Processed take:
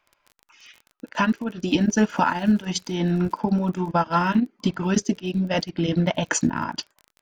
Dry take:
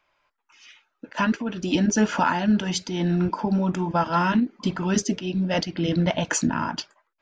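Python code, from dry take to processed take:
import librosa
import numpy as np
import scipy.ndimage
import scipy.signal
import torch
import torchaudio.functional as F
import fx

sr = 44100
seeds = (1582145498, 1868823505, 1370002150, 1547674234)

y = fx.transient(x, sr, attack_db=3, sustain_db=-10)
y = fx.dmg_crackle(y, sr, seeds[0], per_s=fx.steps((0.0, 29.0), (1.9, 100.0), (3.33, 26.0)), level_db=-36.0)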